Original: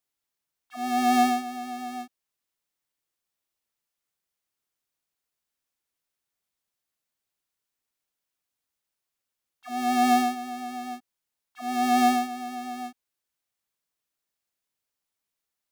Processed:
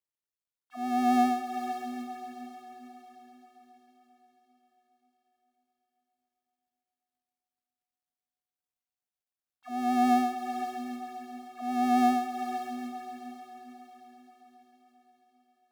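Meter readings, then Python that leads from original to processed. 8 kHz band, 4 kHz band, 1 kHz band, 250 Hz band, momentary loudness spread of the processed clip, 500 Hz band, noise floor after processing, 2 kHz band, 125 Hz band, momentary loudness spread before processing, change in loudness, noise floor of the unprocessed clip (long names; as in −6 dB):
−10.0 dB, −9.0 dB, −3.0 dB, −1.5 dB, 22 LU, −2.5 dB, below −85 dBFS, −7.0 dB, can't be measured, 18 LU, −4.0 dB, below −85 dBFS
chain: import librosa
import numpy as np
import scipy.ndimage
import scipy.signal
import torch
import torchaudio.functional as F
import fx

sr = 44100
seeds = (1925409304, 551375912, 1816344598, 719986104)

y = fx.tilt_shelf(x, sr, db=5.0, hz=1400.0)
y = fx.quant_companded(y, sr, bits=8)
y = fx.echo_diffused(y, sr, ms=495, feedback_pct=51, wet_db=-9.0)
y = F.gain(torch.from_numpy(y), -6.0).numpy()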